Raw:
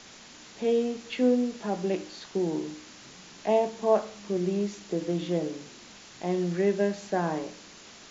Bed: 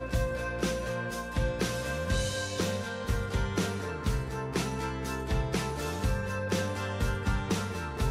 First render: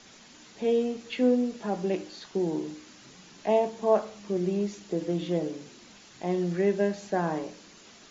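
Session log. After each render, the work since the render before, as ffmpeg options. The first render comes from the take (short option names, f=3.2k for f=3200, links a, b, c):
-af "afftdn=nr=6:nf=-50"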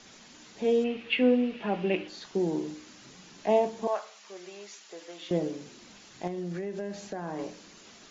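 -filter_complex "[0:a]asettb=1/sr,asplit=3[a][b][c];[a]atrim=end=0.844[d];[b]atrim=start=0.84:end=2.08,asetpts=PTS-STARTPTS,afade=t=in:d=0.004:c=qsin,afade=t=out:st=1.236:d=0.004:c=qsin,lowpass=f=2.7k:t=q:w=3.8[e];[c]atrim=start=2.076[f];[d][e]acrossfade=d=0.004:c1=hsin:c2=qsin[g];[g][f]acrossfade=d=0.004:c1=qsin:c2=hsin,asettb=1/sr,asplit=3[h][i][j];[h]atrim=end=3.874[k];[i]atrim=start=3.87:end=5.31,asetpts=PTS-STARTPTS,afade=t=in:d=0.004:c=qsin,afade=t=out:st=1.436:d=0.004:c=qsin,highpass=980[l];[j]atrim=start=5.306[m];[k][l]acrossfade=d=0.004:c1=hsin:c2=qsin[n];[n][m]acrossfade=d=0.004:c1=qsin:c2=hsin,asettb=1/sr,asplit=3[o][p][q];[o]atrim=end=6.274[r];[p]atrim=start=6.27:end=7.39,asetpts=PTS-STARTPTS,afade=t=in:d=0.004:c=qsin,afade=t=out:st=1.116:d=0.004:c=qsin,acompressor=threshold=-31dB:ratio=8:attack=3.2:release=140:knee=1:detection=peak[s];[q]atrim=start=7.386[t];[r][s]acrossfade=d=0.004:c1=hsin:c2=qsin[u];[u][t]acrossfade=d=0.004:c1=qsin:c2=hsin"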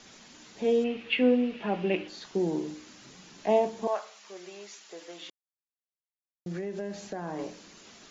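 -filter_complex "[0:a]asplit=3[a][b][c];[a]atrim=end=5.3,asetpts=PTS-STARTPTS,afade=t=out:st=5.296:d=0.004:c=hsin[d];[b]atrim=start=5.3:end=6.46,asetpts=PTS-STARTPTS,volume=0[e];[c]atrim=start=6.46,asetpts=PTS-STARTPTS,afade=t=in:d=0.004:c=hsin[f];[d][e][f]concat=n=3:v=0:a=1"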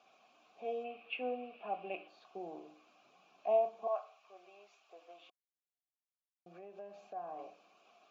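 -filter_complex "[0:a]asplit=3[a][b][c];[a]bandpass=f=730:t=q:w=8,volume=0dB[d];[b]bandpass=f=1.09k:t=q:w=8,volume=-6dB[e];[c]bandpass=f=2.44k:t=q:w=8,volume=-9dB[f];[d][e][f]amix=inputs=3:normalize=0"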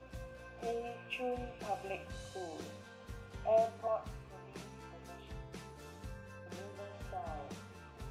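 -filter_complex "[1:a]volume=-18.5dB[a];[0:a][a]amix=inputs=2:normalize=0"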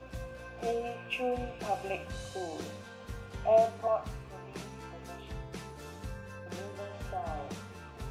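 -af "volume=6dB"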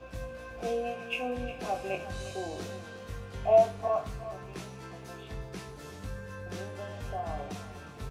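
-filter_complex "[0:a]asplit=2[a][b];[b]adelay=21,volume=-5.5dB[c];[a][c]amix=inputs=2:normalize=0,aecho=1:1:358:0.2"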